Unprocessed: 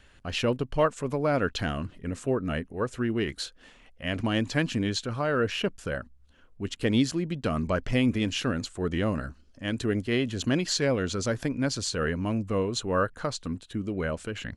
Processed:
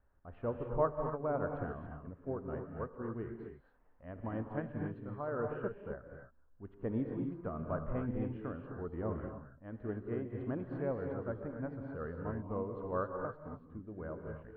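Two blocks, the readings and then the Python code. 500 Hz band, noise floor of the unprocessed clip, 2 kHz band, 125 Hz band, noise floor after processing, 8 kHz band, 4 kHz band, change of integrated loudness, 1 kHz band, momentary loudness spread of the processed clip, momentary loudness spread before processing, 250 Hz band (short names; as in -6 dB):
-9.0 dB, -56 dBFS, -18.0 dB, -10.5 dB, -65 dBFS, under -40 dB, under -40 dB, -11.0 dB, -9.0 dB, 12 LU, 9 LU, -12.0 dB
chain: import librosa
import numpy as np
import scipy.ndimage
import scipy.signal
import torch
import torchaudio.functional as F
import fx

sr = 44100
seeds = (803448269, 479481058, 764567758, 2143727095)

y = scipy.signal.sosfilt(scipy.signal.butter(4, 1200.0, 'lowpass', fs=sr, output='sos'), x)
y = fx.peak_eq(y, sr, hz=220.0, db=-6.5, octaves=2.4)
y = fx.rev_gated(y, sr, seeds[0], gate_ms=300, shape='rising', drr_db=1.5)
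y = fx.upward_expand(y, sr, threshold_db=-37.0, expansion=1.5)
y = y * 10.0 ** (-4.5 / 20.0)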